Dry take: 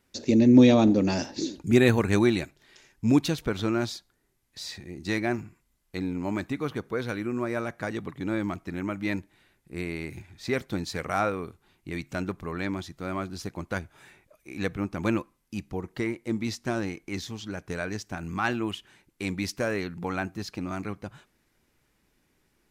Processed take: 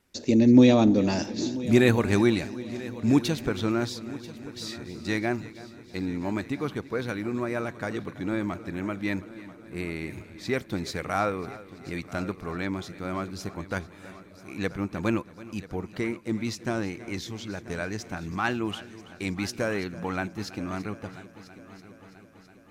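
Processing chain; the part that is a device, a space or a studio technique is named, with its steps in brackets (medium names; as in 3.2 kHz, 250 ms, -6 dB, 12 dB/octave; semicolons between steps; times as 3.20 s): multi-head tape echo (multi-head delay 329 ms, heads first and third, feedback 60%, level -18 dB; wow and flutter 22 cents)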